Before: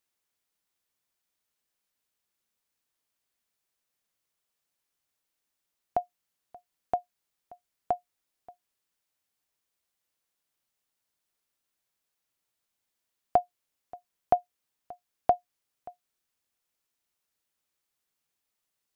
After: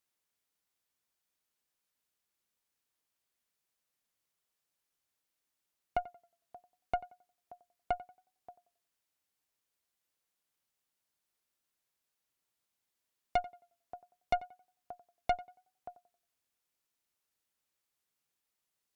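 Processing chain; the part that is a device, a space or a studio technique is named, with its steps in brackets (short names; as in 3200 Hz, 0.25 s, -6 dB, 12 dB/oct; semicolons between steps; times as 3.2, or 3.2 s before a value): rockabilly slapback (tube stage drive 23 dB, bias 0.55; tape echo 91 ms, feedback 34%, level -16 dB, low-pass 1800 Hz)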